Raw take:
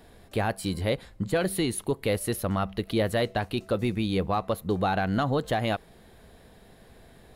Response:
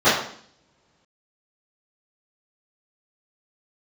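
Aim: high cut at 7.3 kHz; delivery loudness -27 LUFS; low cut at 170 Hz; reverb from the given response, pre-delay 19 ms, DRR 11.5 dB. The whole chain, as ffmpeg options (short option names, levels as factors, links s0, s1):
-filter_complex "[0:a]highpass=170,lowpass=7300,asplit=2[s0][s1];[1:a]atrim=start_sample=2205,adelay=19[s2];[s1][s2]afir=irnorm=-1:irlink=0,volume=0.0168[s3];[s0][s3]amix=inputs=2:normalize=0,volume=1.26"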